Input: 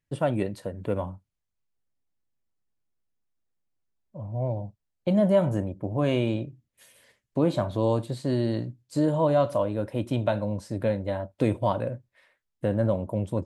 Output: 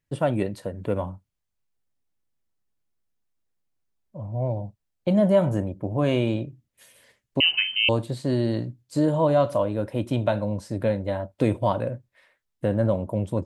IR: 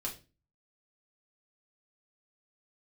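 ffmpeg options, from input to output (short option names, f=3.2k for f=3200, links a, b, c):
-filter_complex "[0:a]asettb=1/sr,asplit=3[a][b][c];[a]atrim=end=7.404[d];[b]atrim=start=7.4:end=7.89,asetpts=PTS-STARTPTS,afade=t=in:d=0.004:c=qsin,afade=t=out:st=0.486:d=0.004:c=qsin,lowpass=f=2.7k:t=q:w=0.5098,lowpass=f=2.7k:t=q:w=0.6013,lowpass=f=2.7k:t=q:w=0.9,lowpass=f=2.7k:t=q:w=2.563,afreqshift=-3200[e];[c]atrim=start=7.886[f];[d][e]acrossfade=d=0.004:c1=hsin:c2=qsin[g];[g][f]acrossfade=d=0.004:c1=qsin:c2=hsin,volume=2dB"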